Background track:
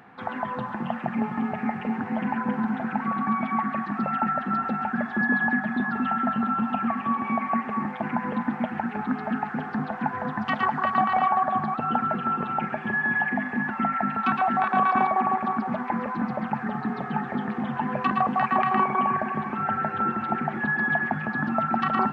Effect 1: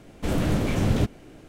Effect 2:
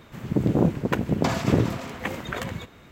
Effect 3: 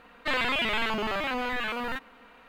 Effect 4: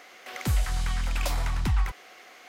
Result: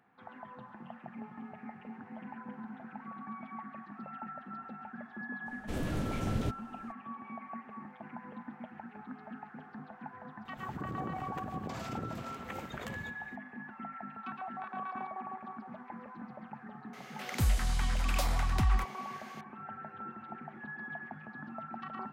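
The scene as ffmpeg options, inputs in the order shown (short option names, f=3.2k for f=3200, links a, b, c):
-filter_complex "[0:a]volume=-18.5dB[a];[2:a]acompressor=threshold=-25dB:ratio=6:attack=3.2:release=140:knee=1:detection=peak[b];[1:a]atrim=end=1.48,asetpts=PTS-STARTPTS,volume=-11dB,afade=t=in:d=0.02,afade=t=out:st=1.46:d=0.02,adelay=240345S[c];[b]atrim=end=2.91,asetpts=PTS-STARTPTS,volume=-11dB,afade=t=in:d=0.004:c=hsin,afade=t=out:st=2.906:d=0.004:c=hsin,adelay=10450[d];[4:a]atrim=end=2.48,asetpts=PTS-STARTPTS,volume=-3dB,afade=t=in:d=0.004:c=hsin,afade=t=out:st=2.476:d=0.004:c=hsin,adelay=16930[e];[a][c][d][e]amix=inputs=4:normalize=0"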